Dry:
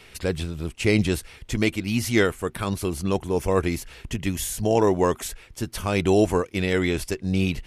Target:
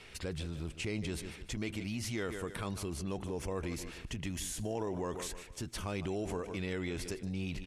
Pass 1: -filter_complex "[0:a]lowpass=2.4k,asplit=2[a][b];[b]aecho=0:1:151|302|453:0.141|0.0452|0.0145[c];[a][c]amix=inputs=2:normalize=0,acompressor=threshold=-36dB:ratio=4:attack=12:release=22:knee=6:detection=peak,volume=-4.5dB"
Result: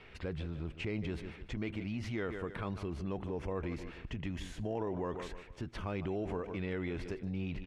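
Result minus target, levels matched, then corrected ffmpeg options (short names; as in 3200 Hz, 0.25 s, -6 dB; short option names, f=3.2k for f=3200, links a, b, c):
8000 Hz band -16.5 dB
-filter_complex "[0:a]lowpass=9.3k,asplit=2[a][b];[b]aecho=0:1:151|302|453:0.141|0.0452|0.0145[c];[a][c]amix=inputs=2:normalize=0,acompressor=threshold=-36dB:ratio=4:attack=12:release=22:knee=6:detection=peak,volume=-4.5dB"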